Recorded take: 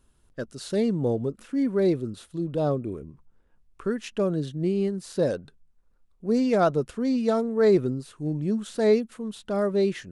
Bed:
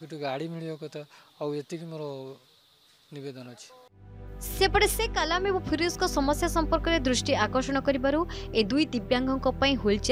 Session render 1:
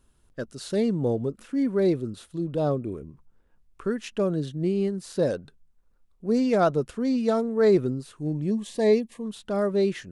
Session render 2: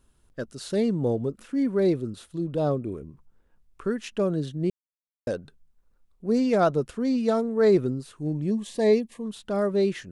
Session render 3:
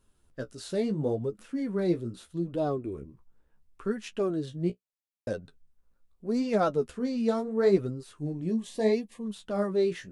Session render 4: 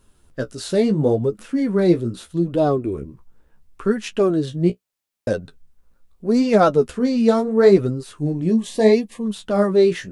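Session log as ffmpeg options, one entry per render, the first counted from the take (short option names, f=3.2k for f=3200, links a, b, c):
-filter_complex "[0:a]asettb=1/sr,asplit=3[a][b][c];[a]atrim=end=8.504[d];[b]atrim=start=8.5:end=9.26,asetpts=PTS-STARTPTS,afade=t=in:d=0.004:c=qsin,afade=t=out:st=0.756:d=0.004:c=qsin,asuperstop=centerf=1400:order=12:qfactor=3.3[e];[c]atrim=start=9.256[f];[d][e]acrossfade=d=0.004:c1=hsin:c2=qsin[g];[g][f]acrossfade=d=0.004:c1=qsin:c2=hsin"
-filter_complex "[0:a]asplit=3[a][b][c];[a]atrim=end=4.7,asetpts=PTS-STARTPTS,afade=t=out:st=4.696:d=0.004:c=hsin[d];[b]atrim=start=4.7:end=5.27,asetpts=PTS-STARTPTS,volume=0[e];[c]atrim=start=5.27,asetpts=PTS-STARTPTS,afade=t=in:d=0.004:c=hsin[f];[d][e][f]concat=n=3:v=0:a=1"
-af "flanger=delay=9.4:depth=8.2:regen=27:speed=0.76:shape=sinusoidal"
-af "volume=11dB,alimiter=limit=-3dB:level=0:latency=1"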